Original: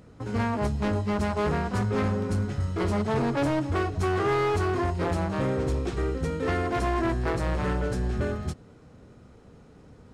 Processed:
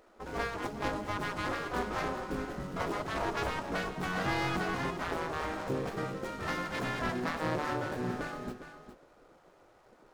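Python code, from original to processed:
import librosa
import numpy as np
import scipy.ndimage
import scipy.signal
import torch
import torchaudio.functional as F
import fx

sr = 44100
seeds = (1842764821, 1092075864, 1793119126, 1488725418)

y = scipy.signal.medfilt(x, 15)
y = fx.spec_gate(y, sr, threshold_db=-10, keep='weak')
y = y + 10.0 ** (-10.5 / 20.0) * np.pad(y, (int(409 * sr / 1000.0), 0))[:len(y)]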